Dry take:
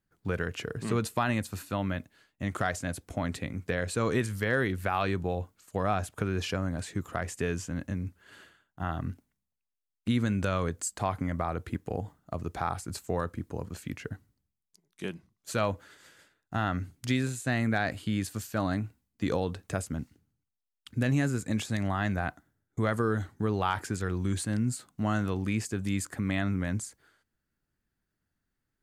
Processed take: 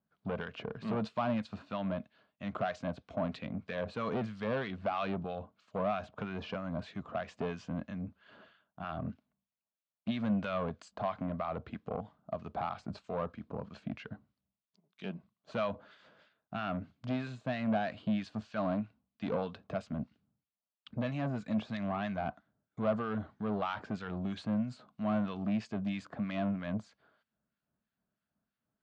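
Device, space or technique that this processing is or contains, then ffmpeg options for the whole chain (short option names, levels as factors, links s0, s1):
guitar amplifier with harmonic tremolo: -filter_complex "[0:a]acrossover=split=1300[s0][s1];[s0]aeval=exprs='val(0)*(1-0.7/2+0.7/2*cos(2*PI*3.1*n/s))':c=same[s2];[s1]aeval=exprs='val(0)*(1-0.7/2-0.7/2*cos(2*PI*3.1*n/s))':c=same[s3];[s2][s3]amix=inputs=2:normalize=0,asoftclip=type=tanh:threshold=0.0335,highpass=86,equalizer=f=95:t=q:w=4:g=-8,equalizer=f=210:t=q:w=4:g=7,equalizer=f=340:t=q:w=4:g=-6,equalizer=f=640:t=q:w=4:g=9,equalizer=f=1100:t=q:w=4:g=4,equalizer=f=1900:t=q:w=4:g=-6,lowpass=f=4000:w=0.5412,lowpass=f=4000:w=1.3066"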